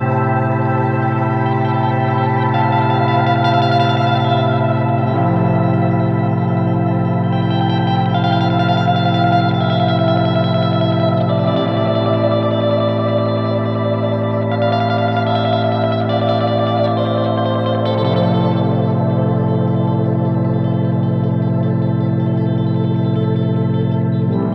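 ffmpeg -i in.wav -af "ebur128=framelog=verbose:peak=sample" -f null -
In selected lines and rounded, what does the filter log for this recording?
Integrated loudness:
  I:         -15.8 LUFS
  Threshold: -25.8 LUFS
Loudness range:
  LRA:         1.8 LU
  Threshold: -35.7 LUFS
  LRA low:   -16.5 LUFS
  LRA high:  -14.7 LUFS
Sample peak:
  Peak:       -1.9 dBFS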